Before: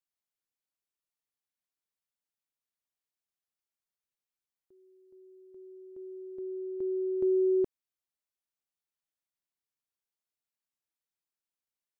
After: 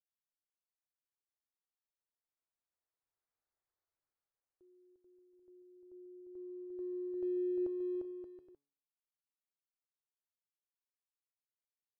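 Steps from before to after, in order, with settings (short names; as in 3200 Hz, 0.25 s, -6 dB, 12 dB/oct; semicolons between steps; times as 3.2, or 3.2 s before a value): Wiener smoothing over 15 samples; Doppler pass-by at 3.46, 14 m/s, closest 8.4 m; bell 200 Hz -13.5 dB 0.68 oct; de-hum 142 Hz, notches 33; on a send: bouncing-ball echo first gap 0.35 s, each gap 0.65×, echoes 5; on the sum: dynamic EQ 620 Hz, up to +5 dB, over -59 dBFS, Q 1.3; gain +5 dB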